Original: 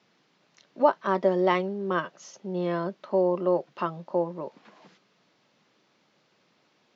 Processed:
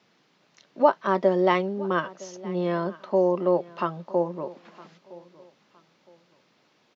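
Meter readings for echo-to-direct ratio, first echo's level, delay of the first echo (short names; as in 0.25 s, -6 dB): -20.5 dB, -21.0 dB, 0.963 s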